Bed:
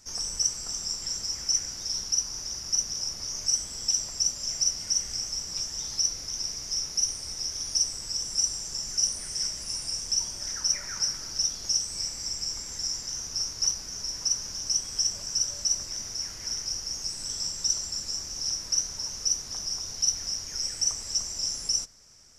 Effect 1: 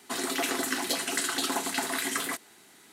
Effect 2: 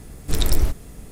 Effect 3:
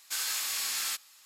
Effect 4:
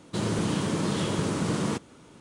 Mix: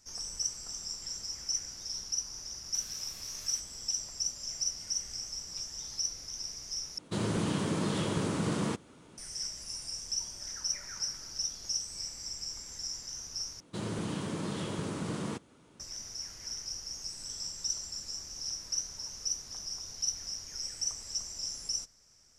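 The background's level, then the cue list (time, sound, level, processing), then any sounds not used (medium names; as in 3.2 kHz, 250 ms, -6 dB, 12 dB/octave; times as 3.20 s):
bed -7.5 dB
2.64 s: add 3 -10.5 dB + compression, threshold -38 dBFS
6.98 s: replace with 4 -4 dB
13.60 s: replace with 4 -8.5 dB
not used: 1, 2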